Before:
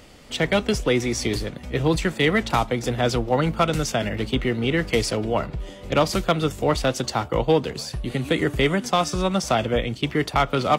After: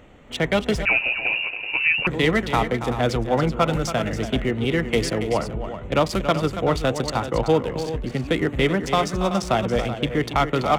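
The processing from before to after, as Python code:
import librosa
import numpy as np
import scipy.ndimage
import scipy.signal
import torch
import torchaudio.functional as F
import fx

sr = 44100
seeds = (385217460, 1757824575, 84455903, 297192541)

y = fx.wiener(x, sr, points=9)
y = fx.echo_multitap(y, sr, ms=(280, 380), db=(-10.5, -11.5))
y = fx.freq_invert(y, sr, carrier_hz=2800, at=(0.85, 2.07))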